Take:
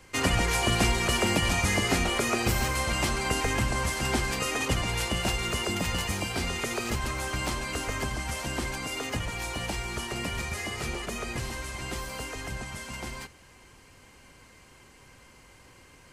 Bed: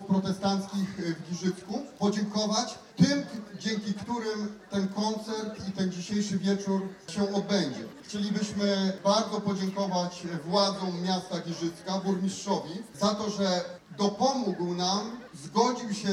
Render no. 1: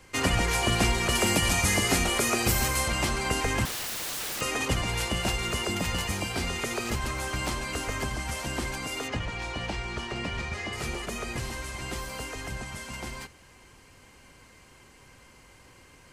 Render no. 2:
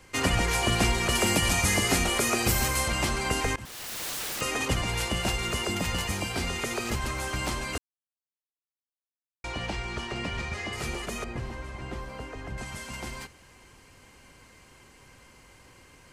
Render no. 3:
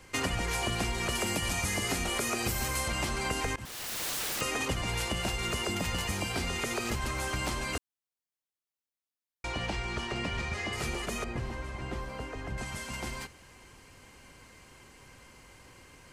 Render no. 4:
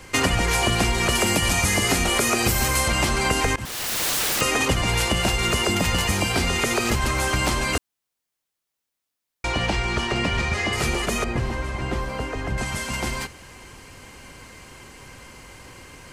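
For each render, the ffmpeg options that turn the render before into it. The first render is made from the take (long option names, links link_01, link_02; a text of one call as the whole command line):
ffmpeg -i in.wav -filter_complex "[0:a]asettb=1/sr,asplit=3[link_01][link_02][link_03];[link_01]atrim=end=1.154[link_04];[link_02]atrim=start=1.15:end=2.88,asetpts=PTS-STARTPTS,afade=type=in:duration=0.004:curve=qsin,afade=type=out:start_time=1.726:duration=0.004:curve=qsin,highshelf=frequency=6500:gain=9[link_05];[link_03]atrim=start=2.876[link_06];[link_04][link_05]acrossfade=duration=0.004:curve1=hsin:curve2=qsin[link_07];[link_07][link_06]acrossfade=duration=0.004:curve1=qsin:curve2=hsin,asettb=1/sr,asplit=3[link_08][link_09][link_10];[link_08]atrim=end=3.654[link_11];[link_09]atrim=start=3.65:end=4.41,asetpts=PTS-STARTPTS,afade=type=in:duration=0.004:curve=qsin,afade=type=out:start_time=0.756:duration=0.004:curve=qsin,aeval=exprs='(mod(28.2*val(0)+1,2)-1)/28.2':channel_layout=same[link_12];[link_10]atrim=start=4.406[link_13];[link_11][link_12]acrossfade=duration=0.004:curve1=hsin:curve2=qsin[link_14];[link_14][link_13]acrossfade=duration=0.004:curve1=qsin:curve2=hsin,asettb=1/sr,asplit=3[link_15][link_16][link_17];[link_15]atrim=end=9.084[link_18];[link_16]atrim=start=9.08:end=10.73,asetpts=PTS-STARTPTS,afade=type=in:duration=0.004:curve=qsin,afade=type=out:start_time=1.646:duration=0.004:curve=qsin,lowpass=4800[link_19];[link_17]atrim=start=10.726[link_20];[link_18][link_19]acrossfade=duration=0.004:curve1=hsin:curve2=qsin[link_21];[link_21][link_20]acrossfade=duration=0.004:curve1=qsin:curve2=hsin" out.wav
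ffmpeg -i in.wav -filter_complex "[0:a]asettb=1/sr,asplit=3[link_01][link_02][link_03];[link_01]atrim=end=11.244[link_04];[link_02]atrim=start=11.24:end=12.58,asetpts=PTS-STARTPTS,afade=type=in:duration=0.004:curve=qsin,afade=type=out:start_time=1.336:duration=0.004:curve=qsin,lowpass=frequency=1200:poles=1[link_05];[link_03]atrim=start=12.576[link_06];[link_04][link_05]acrossfade=duration=0.004:curve1=hsin:curve2=qsin[link_07];[link_07][link_06]acrossfade=duration=0.004:curve1=qsin:curve2=hsin,asplit=4[link_08][link_09][link_10][link_11];[link_08]atrim=end=3.56,asetpts=PTS-STARTPTS,afade=type=out:start_time=3.556:duration=0.004:curve=hsin:silence=0.0707946[link_12];[link_09]atrim=start=3.56:end=7.78,asetpts=PTS-STARTPTS,afade=type=in:duration=0.5:silence=0.0707946,afade=type=out:start_time=4.216:duration=0.004:curve=hsin[link_13];[link_10]atrim=start=7.78:end=9.44,asetpts=PTS-STARTPTS,volume=0[link_14];[link_11]atrim=start=9.44,asetpts=PTS-STARTPTS,afade=type=in:duration=0.004:curve=hsin[link_15];[link_12][link_13][link_14][link_15]concat=n=4:v=0:a=1" out.wav
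ffmpeg -i in.wav -af "acompressor=threshold=-28dB:ratio=6" out.wav
ffmpeg -i in.wav -af "volume=10.5dB" out.wav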